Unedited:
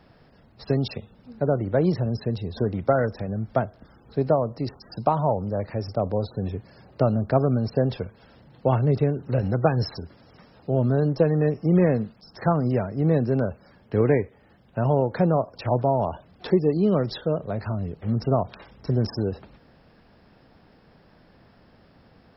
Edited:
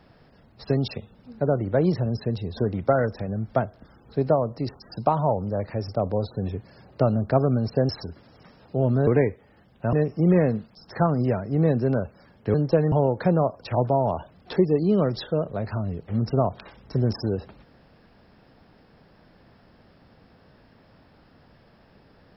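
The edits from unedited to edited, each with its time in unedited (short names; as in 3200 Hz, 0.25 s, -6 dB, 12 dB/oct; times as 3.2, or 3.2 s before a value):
7.89–9.83 cut
11.01–11.39 swap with 14–14.86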